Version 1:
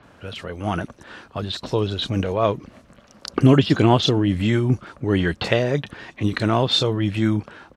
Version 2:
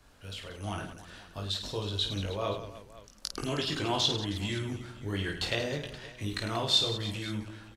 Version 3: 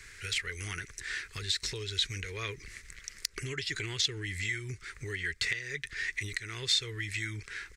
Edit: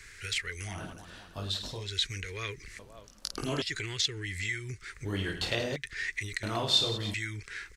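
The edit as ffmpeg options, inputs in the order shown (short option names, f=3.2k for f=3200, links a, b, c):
-filter_complex "[1:a]asplit=4[a][b][c][d];[2:a]asplit=5[e][f][g][h][i];[e]atrim=end=0.86[j];[a]atrim=start=0.62:end=1.9[k];[f]atrim=start=1.66:end=2.792[l];[b]atrim=start=2.788:end=3.622[m];[g]atrim=start=3.618:end=5.052[n];[c]atrim=start=5.048:end=5.762[o];[h]atrim=start=5.758:end=6.432[p];[d]atrim=start=6.428:end=7.142[q];[i]atrim=start=7.138[r];[j][k]acrossfade=d=0.24:c1=tri:c2=tri[s];[s][l]acrossfade=d=0.24:c1=tri:c2=tri[t];[t][m]acrossfade=d=0.004:c1=hsin:c2=hsin[u];[u][n]acrossfade=d=0.004:c1=hsin:c2=hsin[v];[v][o]acrossfade=d=0.004:c1=hsin:c2=hsin[w];[w][p]acrossfade=d=0.004:c1=hsin:c2=hsin[x];[x][q]acrossfade=d=0.004:c1=hsin:c2=hsin[y];[y][r]acrossfade=d=0.004:c1=hsin:c2=hsin"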